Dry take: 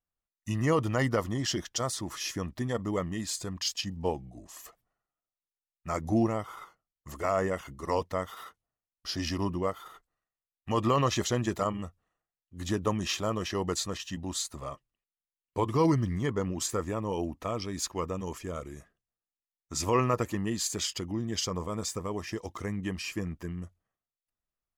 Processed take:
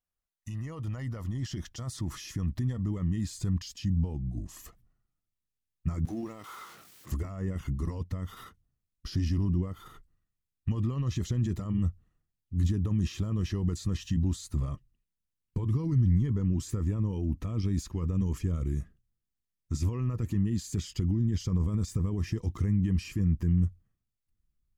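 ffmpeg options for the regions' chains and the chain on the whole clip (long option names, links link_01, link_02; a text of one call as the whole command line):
ffmpeg -i in.wav -filter_complex "[0:a]asettb=1/sr,asplit=3[link_01][link_02][link_03];[link_01]atrim=end=6.054[link_04];[link_02]atrim=start=6.05:end=7.12,asetpts=PTS-STARTPTS,afade=type=in:duration=0.004:curve=qsin,afade=type=out:start_time=1.066:duration=0.004:curve=qsin,aeval=exprs='val(0)+0.5*0.0075*sgn(val(0))':channel_layout=same,highpass=470,acrusher=bits=9:mode=log:mix=0:aa=0.000001[link_05];[link_03]atrim=start=7.116[link_06];[link_04][link_05]acrossfade=duration=0.004:curve1=hsin:curve2=qsin[link_07];[link_07][link_06]acrossfade=duration=0.004:curve1=qsin:curve2=hsin,acompressor=threshold=-32dB:ratio=6,alimiter=level_in=9dB:limit=-24dB:level=0:latency=1:release=11,volume=-9dB,asubboost=boost=11.5:cutoff=190,volume=-1.5dB" out.wav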